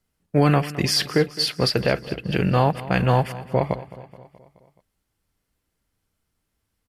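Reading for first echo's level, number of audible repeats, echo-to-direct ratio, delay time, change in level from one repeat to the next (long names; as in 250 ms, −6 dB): −17.0 dB, 4, −15.5 dB, 213 ms, −4.5 dB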